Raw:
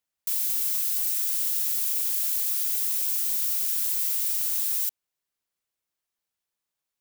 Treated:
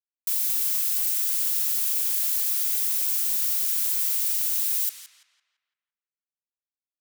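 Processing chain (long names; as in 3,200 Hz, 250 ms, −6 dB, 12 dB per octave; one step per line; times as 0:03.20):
bit reduction 9 bits
high-pass filter 340 Hz 12 dB per octave, from 0:04.29 1,300 Hz
feedback echo with a low-pass in the loop 169 ms, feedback 47%, low-pass 3,500 Hz, level −3.5 dB
level +1.5 dB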